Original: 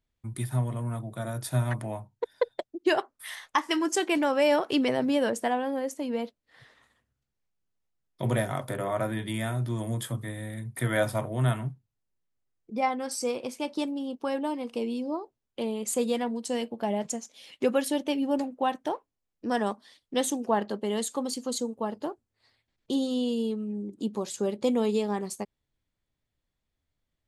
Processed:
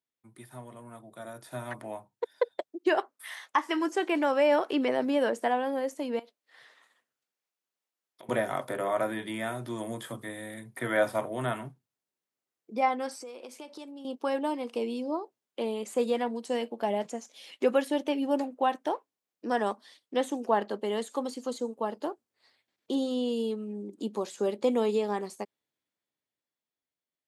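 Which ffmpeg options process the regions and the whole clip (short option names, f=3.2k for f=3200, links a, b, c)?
-filter_complex "[0:a]asettb=1/sr,asplit=3[a][b][c];[a]atrim=end=6.194[d];[b]atrim=start=6.19:end=8.29,asetpts=PTS-STARTPTS,afade=t=in:d=0.004:c=qsin,afade=t=out:st=2.096:d=0.004:c=qsin,highpass=f=520:p=1,acompressor=threshold=-46dB:ratio=12:attack=3.2:release=140:knee=1:detection=peak[e];[c]atrim=start=8.286[f];[d][e]acrossfade=d=0.004:c1=hsin:c2=qsin[g];[g][f]acrossfade=d=0.004:c1=qsin:c2=hsin,asettb=1/sr,asplit=3[h][i][j];[h]atrim=end=13.224[k];[i]atrim=start=13.22:end=14.05,asetpts=PTS-STARTPTS,afade=t=in:d=0.004:c=qsin,afade=t=out:st=0.826:d=0.004:c=qsin,highpass=200,acompressor=threshold=-40dB:ratio=8:attack=3.2:release=140:knee=1:detection=peak[l];[j]atrim=start=14.046[m];[k][l]acrossfade=d=0.004:c1=hsin:c2=qsin[n];[n][m]acrossfade=d=0.004:c1=qsin:c2=hsin,acrossover=split=2600[o][p];[p]acompressor=threshold=-45dB:ratio=4:attack=1:release=60[q];[o][q]amix=inputs=2:normalize=0,highpass=280,dynaudnorm=f=200:g=17:m=10dB,volume=-8.5dB"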